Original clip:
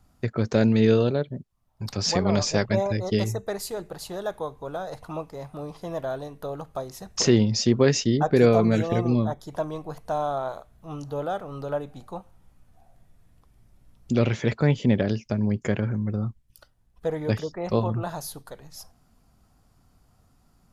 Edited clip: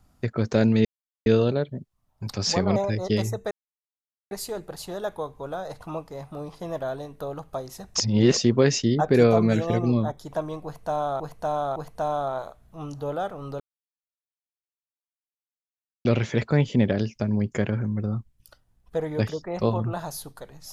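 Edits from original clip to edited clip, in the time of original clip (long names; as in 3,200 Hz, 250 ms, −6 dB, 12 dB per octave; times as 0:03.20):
0:00.85: splice in silence 0.41 s
0:02.35–0:02.78: remove
0:03.53: splice in silence 0.80 s
0:07.22–0:07.59: reverse
0:09.86–0:10.42: repeat, 3 plays
0:11.70–0:14.15: silence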